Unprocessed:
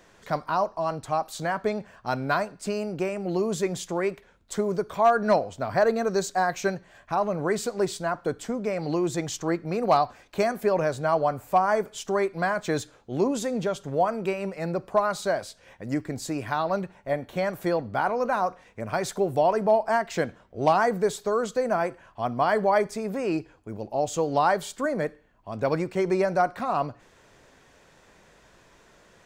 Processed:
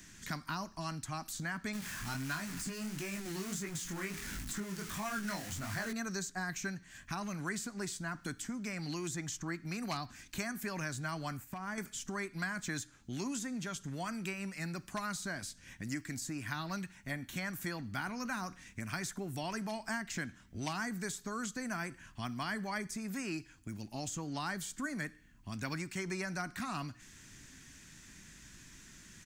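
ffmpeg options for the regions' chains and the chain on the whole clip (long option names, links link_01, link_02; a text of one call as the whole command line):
ffmpeg -i in.wav -filter_complex "[0:a]asettb=1/sr,asplit=3[link_01][link_02][link_03];[link_01]atrim=end=1.734[link_04];[link_02]atrim=start=1.73:end=5.93,asetpts=PTS-STARTPTS,afade=type=in:duration=0.004:curve=qsin,afade=type=out:start_time=4.196:duration=0.004:curve=qsin,aeval=exprs='val(0)+0.5*0.0316*sgn(val(0))':channel_layout=same,flanger=delay=19:depth=7.4:speed=1.5[link_05];[link_03]atrim=start=5.926[link_06];[link_04][link_05]acrossfade=duration=0.004:curve1=hsin:curve2=qsin[link_07];[link_07][link_06]acrossfade=duration=0.004:curve1=qsin:curve2=hsin,asettb=1/sr,asplit=3[link_08][link_09][link_10];[link_08]atrim=end=11.374[link_11];[link_09]atrim=start=11.37:end=11.78,asetpts=PTS-STARTPTS,afade=type=in:duration=0.004:curve=qsin,afade=type=out:start_time=0.406:duration=0.004:curve=qsin,equalizer=frequency=7800:width=0.33:gain=-9.5,acompressor=threshold=-27dB:ratio=4:attack=3.2:release=140:knee=1:detection=peak,agate=range=-7dB:threshold=-51dB:ratio=16:release=100:detection=peak[link_12];[link_10]atrim=start=11.776[link_13];[link_11][link_12]acrossfade=duration=0.004:curve1=hsin:curve2=qsin[link_14];[link_14][link_13]acrossfade=duration=0.004:curve1=qsin:curve2=hsin,firequalizer=gain_entry='entry(270,0);entry(480,-24);entry(1700,-3);entry(3800,-2);entry(6300,6);entry(13000,4)':delay=0.05:min_phase=1,acrossover=split=610|1600[link_15][link_16][link_17];[link_15]acompressor=threshold=-46dB:ratio=4[link_18];[link_16]acompressor=threshold=-44dB:ratio=4[link_19];[link_17]acompressor=threshold=-48dB:ratio=4[link_20];[link_18][link_19][link_20]amix=inputs=3:normalize=0,volume=4dB" out.wav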